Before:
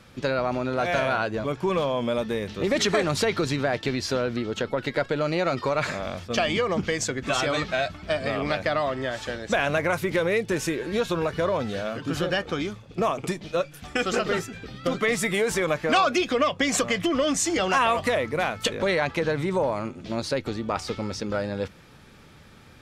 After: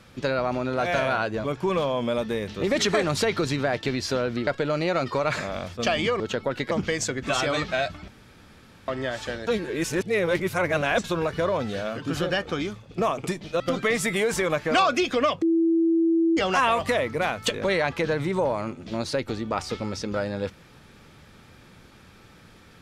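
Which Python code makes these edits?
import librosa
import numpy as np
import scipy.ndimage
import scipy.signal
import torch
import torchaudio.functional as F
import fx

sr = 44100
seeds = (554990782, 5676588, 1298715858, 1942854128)

y = fx.edit(x, sr, fx.move(start_s=4.47, length_s=0.51, to_s=6.71),
    fx.room_tone_fill(start_s=8.08, length_s=0.8),
    fx.reverse_span(start_s=9.47, length_s=1.57),
    fx.cut(start_s=13.6, length_s=1.18),
    fx.bleep(start_s=16.6, length_s=0.95, hz=330.0, db=-17.5), tone=tone)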